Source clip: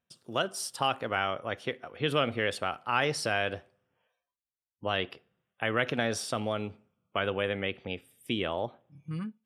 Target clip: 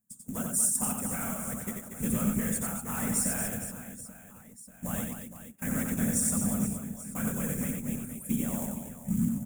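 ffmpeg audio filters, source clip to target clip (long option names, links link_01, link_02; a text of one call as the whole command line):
ffmpeg -i in.wav -af "equalizer=frequency=3000:width_type=o:width=0.21:gain=-13.5,afftfilt=real='hypot(re,im)*cos(2*PI*random(0))':imag='hypot(re,im)*sin(2*PI*random(1))':win_size=512:overlap=0.75,acrusher=bits=3:mode=log:mix=0:aa=0.000001,asoftclip=type=tanh:threshold=-29dB,firequalizer=gain_entry='entry(110,0);entry(230,12);entry(320,-11);entry(1500,-9);entry(3200,-12);entry(4600,-18);entry(7100,13)':delay=0.05:min_phase=1,aecho=1:1:90|234|464.4|833|1423:0.631|0.398|0.251|0.158|0.1,volume=6dB" out.wav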